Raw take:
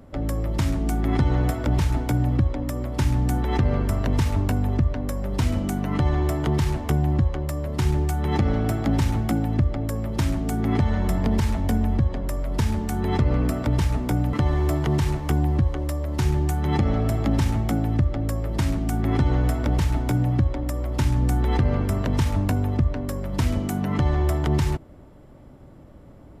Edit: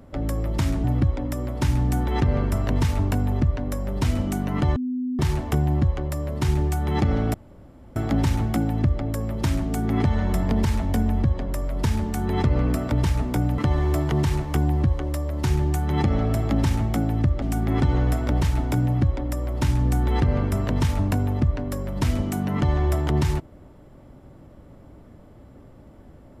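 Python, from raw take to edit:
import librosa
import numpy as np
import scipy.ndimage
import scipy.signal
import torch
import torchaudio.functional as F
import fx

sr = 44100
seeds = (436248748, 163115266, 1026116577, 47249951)

y = fx.edit(x, sr, fx.cut(start_s=0.84, length_s=1.37),
    fx.bleep(start_s=6.13, length_s=0.43, hz=252.0, db=-23.5),
    fx.insert_room_tone(at_s=8.71, length_s=0.62),
    fx.cut(start_s=18.17, length_s=0.62), tone=tone)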